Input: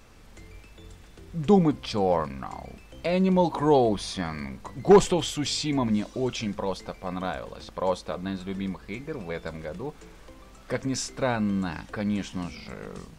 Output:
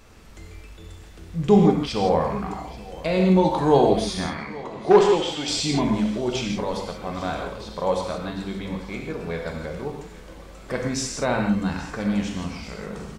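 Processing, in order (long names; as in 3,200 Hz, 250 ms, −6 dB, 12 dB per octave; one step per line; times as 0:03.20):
0:04.26–0:05.48: three-way crossover with the lows and the highs turned down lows −13 dB, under 260 Hz, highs −17 dB, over 5,300 Hz
repeating echo 834 ms, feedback 60%, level −19.5 dB
reverb whose tail is shaped and stops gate 190 ms flat, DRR 1 dB
level +1.5 dB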